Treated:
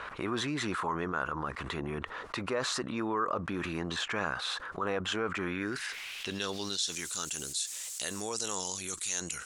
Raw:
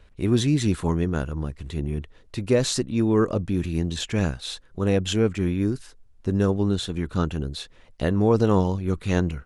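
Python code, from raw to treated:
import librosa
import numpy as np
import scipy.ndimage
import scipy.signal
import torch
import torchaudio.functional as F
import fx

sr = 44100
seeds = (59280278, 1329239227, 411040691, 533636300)

y = fx.high_shelf(x, sr, hz=6000.0, db=9.0)
y = fx.quant_dither(y, sr, seeds[0], bits=10, dither='triangular', at=(5.65, 8.21))
y = fx.filter_sweep_bandpass(y, sr, from_hz=1200.0, to_hz=7500.0, start_s=5.41, end_s=7.1, q=2.8)
y = fx.env_flatten(y, sr, amount_pct=70)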